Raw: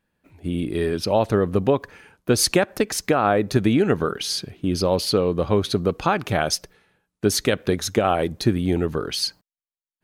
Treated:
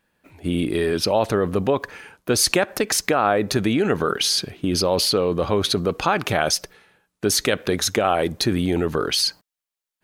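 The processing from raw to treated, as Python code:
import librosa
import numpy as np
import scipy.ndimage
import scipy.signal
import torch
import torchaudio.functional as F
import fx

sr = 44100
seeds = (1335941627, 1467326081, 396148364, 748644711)

p1 = fx.low_shelf(x, sr, hz=300.0, db=-7.5)
p2 = fx.over_compress(p1, sr, threshold_db=-28.0, ratio=-1.0)
y = p1 + F.gain(torch.from_numpy(p2), -2.0).numpy()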